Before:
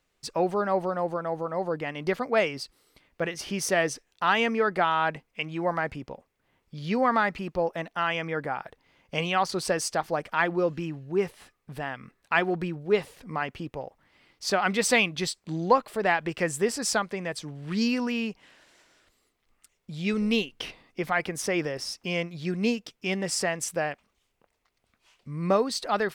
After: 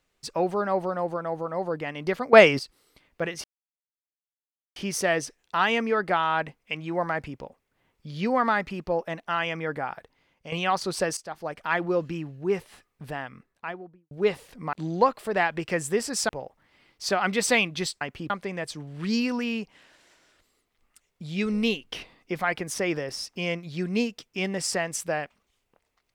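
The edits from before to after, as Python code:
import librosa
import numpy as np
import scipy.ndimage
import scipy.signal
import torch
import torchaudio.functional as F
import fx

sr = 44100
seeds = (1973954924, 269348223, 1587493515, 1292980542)

y = fx.studio_fade_out(x, sr, start_s=11.77, length_s=1.02)
y = fx.edit(y, sr, fx.clip_gain(start_s=2.33, length_s=0.26, db=10.5),
    fx.insert_silence(at_s=3.44, length_s=1.32),
    fx.fade_out_to(start_s=8.65, length_s=0.55, floor_db=-11.0),
    fx.fade_in_from(start_s=9.85, length_s=0.65, floor_db=-15.0),
    fx.swap(start_s=13.41, length_s=0.29, other_s=15.42, other_length_s=1.56), tone=tone)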